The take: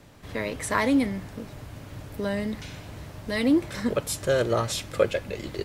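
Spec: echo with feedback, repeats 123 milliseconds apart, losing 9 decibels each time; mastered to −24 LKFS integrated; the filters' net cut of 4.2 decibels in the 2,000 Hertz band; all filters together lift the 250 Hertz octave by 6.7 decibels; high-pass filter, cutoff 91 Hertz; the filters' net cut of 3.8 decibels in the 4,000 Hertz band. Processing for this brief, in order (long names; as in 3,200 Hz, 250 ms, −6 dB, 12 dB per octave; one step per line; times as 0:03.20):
high-pass filter 91 Hz
parametric band 250 Hz +8 dB
parametric band 2,000 Hz −4.5 dB
parametric band 4,000 Hz −3.5 dB
repeating echo 123 ms, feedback 35%, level −9 dB
level −1.5 dB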